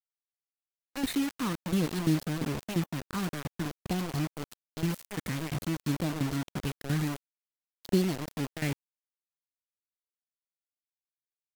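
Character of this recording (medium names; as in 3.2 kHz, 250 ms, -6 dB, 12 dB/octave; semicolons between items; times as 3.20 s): tremolo saw down 2.9 Hz, depth 80%; phasing stages 4, 0.53 Hz, lowest notch 710–2000 Hz; a quantiser's noise floor 6-bit, dither none; AAC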